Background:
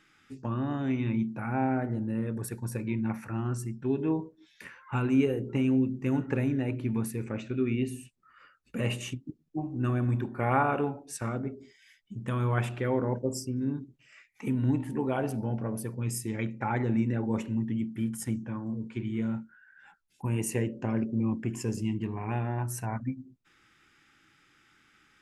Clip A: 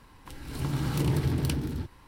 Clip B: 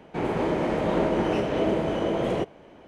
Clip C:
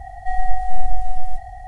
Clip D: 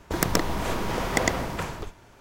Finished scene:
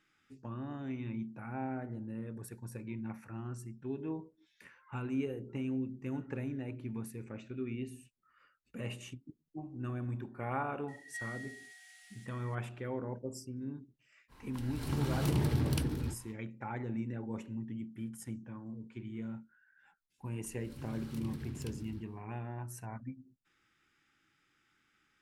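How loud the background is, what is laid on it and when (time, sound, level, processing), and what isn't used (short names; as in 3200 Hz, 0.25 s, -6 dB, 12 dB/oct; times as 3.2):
background -10.5 dB
10.88 add C -3.5 dB + steep high-pass 1700 Hz
14.28 add A -4 dB, fades 0.05 s
20.17 add A -16 dB, fades 0.10 s + bell 700 Hz -6.5 dB 1.3 oct
not used: B, D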